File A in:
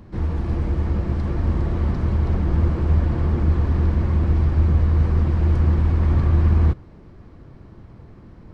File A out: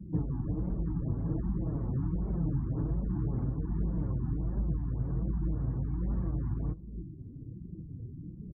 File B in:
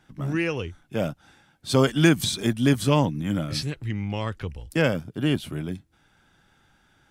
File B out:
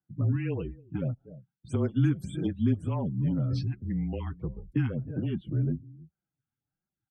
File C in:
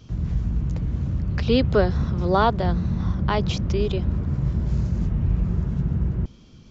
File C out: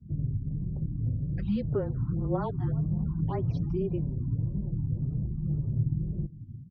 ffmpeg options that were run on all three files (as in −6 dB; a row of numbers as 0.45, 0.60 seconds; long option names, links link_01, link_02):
-af "highshelf=frequency=2300:gain=-9,aecho=1:1:306:0.0841,afftdn=noise_reduction=29:noise_floor=-42,afreqshift=-25,acompressor=threshold=-28dB:ratio=4,flanger=delay=4.9:depth=3.4:regen=14:speed=1.3:shape=triangular,highpass=74,acontrast=61,lowshelf=frequency=370:gain=11.5,afftfilt=real='re*(1-between(b*sr/1024,480*pow(5300/480,0.5+0.5*sin(2*PI*1.8*pts/sr))/1.41,480*pow(5300/480,0.5+0.5*sin(2*PI*1.8*pts/sr))*1.41))':imag='im*(1-between(b*sr/1024,480*pow(5300/480,0.5+0.5*sin(2*PI*1.8*pts/sr))/1.41,480*pow(5300/480,0.5+0.5*sin(2*PI*1.8*pts/sr))*1.41))':win_size=1024:overlap=0.75,volume=-8.5dB"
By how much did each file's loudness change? −13.5, −5.5, −7.5 LU